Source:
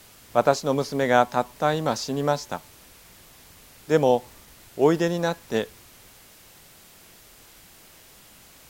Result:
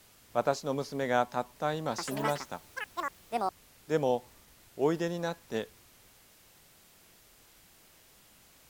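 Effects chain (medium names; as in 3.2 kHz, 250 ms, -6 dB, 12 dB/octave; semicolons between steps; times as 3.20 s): 1.89–4.15 s: ever faster or slower copies 93 ms, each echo +7 st, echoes 3; trim -9 dB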